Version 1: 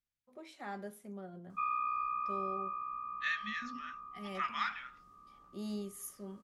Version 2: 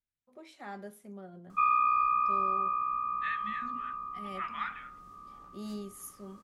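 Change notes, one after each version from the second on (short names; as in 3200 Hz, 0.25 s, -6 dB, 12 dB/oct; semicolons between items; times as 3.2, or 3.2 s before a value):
second voice: add running mean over 8 samples; background +9.0 dB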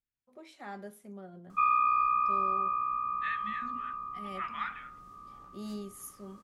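background: remove notches 60/120 Hz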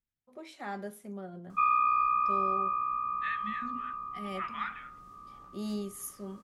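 first voice +4.5 dB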